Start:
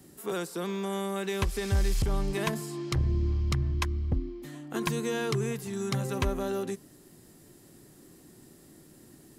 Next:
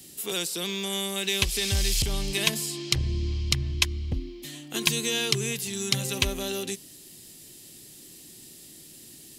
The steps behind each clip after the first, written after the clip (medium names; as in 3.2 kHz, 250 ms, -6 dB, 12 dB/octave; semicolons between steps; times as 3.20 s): resonant high shelf 2 kHz +13 dB, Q 1.5; trim -1 dB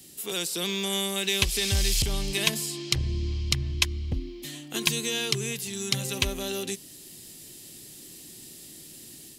level rider gain up to 4 dB; trim -2 dB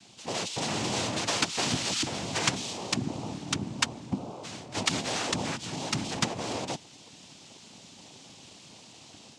noise-vocoded speech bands 4; distance through air 54 m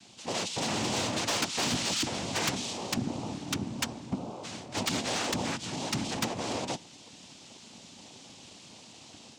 on a send at -22 dB: reverberation RT60 0.45 s, pre-delay 3 ms; on the sum: overload inside the chain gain 23.5 dB